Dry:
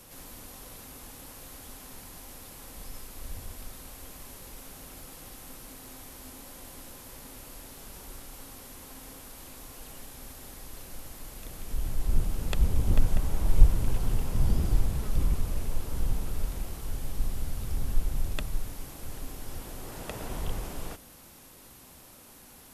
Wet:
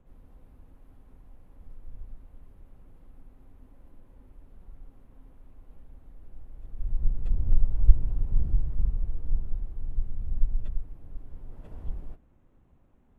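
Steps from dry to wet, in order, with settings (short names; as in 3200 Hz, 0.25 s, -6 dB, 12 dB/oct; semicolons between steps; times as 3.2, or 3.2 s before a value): Wiener smoothing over 9 samples; plain phase-vocoder stretch 0.58×; tilt -3.5 dB/oct; gain -13 dB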